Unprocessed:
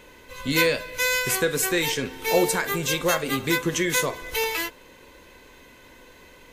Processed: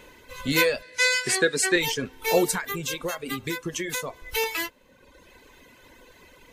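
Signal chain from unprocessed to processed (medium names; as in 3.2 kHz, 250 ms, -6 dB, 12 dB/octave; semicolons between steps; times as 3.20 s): reverb removal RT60 1.1 s; 0.82–1.76 s: cabinet simulation 160–9500 Hz, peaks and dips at 370 Hz +4 dB, 1.1 kHz -4 dB, 1.8 kHz +9 dB, 4.5 kHz +9 dB, 8.8 kHz +5 dB; 2.57–4.31 s: compression, threshold -27 dBFS, peak gain reduction 9.5 dB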